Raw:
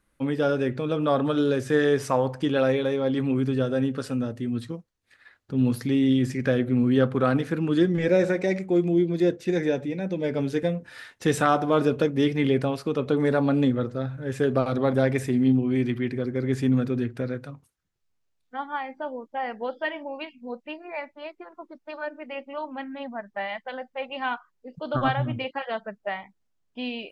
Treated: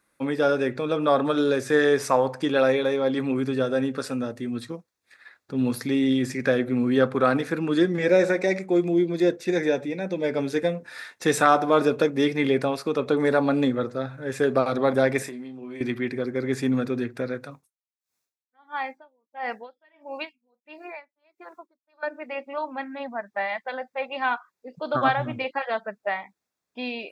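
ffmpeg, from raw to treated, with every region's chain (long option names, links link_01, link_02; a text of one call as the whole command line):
ffmpeg -i in.wav -filter_complex "[0:a]asettb=1/sr,asplit=3[link_01][link_02][link_03];[link_01]atrim=end=15.224[link_04];[link_02]atrim=start=15.22:end=15.81,asetpts=PTS-STARTPTS,afade=type=in:duration=0.004:curve=qsin,afade=type=out:start_time=0.586:duration=0.004:curve=qsin,highpass=frequency=300:poles=1,acompressor=threshold=-33dB:ratio=8:attack=3.2:release=140:knee=1:detection=peak,asplit=2[link_05][link_06];[link_06]adelay=29,volume=-12dB[link_07];[link_05][link_07]amix=inputs=2:normalize=0,atrim=end_sample=26019[link_08];[link_03]atrim=start=15.806[link_09];[link_04][link_08]acrossfade=duration=0.004:curve1=hsin:curve2=qsin[link_10];[link_10][link_09]acrossfade=duration=0.004:curve1=qsin:curve2=hsin,asettb=1/sr,asplit=3[link_11][link_12][link_13];[link_11]atrim=end=17.514[link_14];[link_12]atrim=start=17.51:end=22.03,asetpts=PTS-STARTPTS,afade=type=in:duration=0.004:curve=qsin,afade=type=out:start_time=4.516:duration=0.004:curve=qsin,highshelf=frequency=3800:gain=9.5,bandreject=frequency=4700:width=27,aeval=exprs='val(0)*pow(10,-37*(0.5-0.5*cos(2*PI*1.5*n/s))/20)':channel_layout=same[link_15];[link_13]atrim=start=22.026[link_16];[link_14][link_15]acrossfade=duration=0.004:curve1=hsin:curve2=qsin[link_17];[link_17][link_16]acrossfade=duration=0.004:curve1=qsin:curve2=hsin,highpass=frequency=420:poles=1,bandreject=frequency=3000:width=6.3,volume=4.5dB" out.wav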